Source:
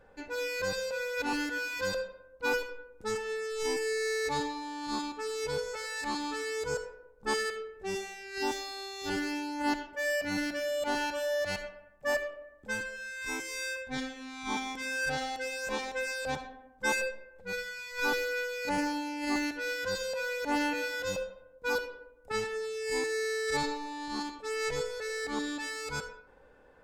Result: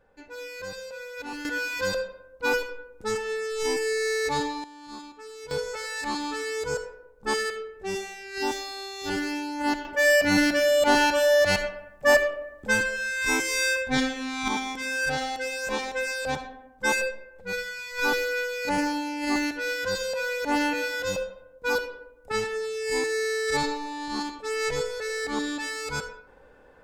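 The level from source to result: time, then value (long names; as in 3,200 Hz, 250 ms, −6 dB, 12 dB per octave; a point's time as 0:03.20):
−4.5 dB
from 0:01.45 +5 dB
from 0:04.64 −7 dB
from 0:05.51 +4 dB
from 0:09.85 +11.5 dB
from 0:14.48 +5 dB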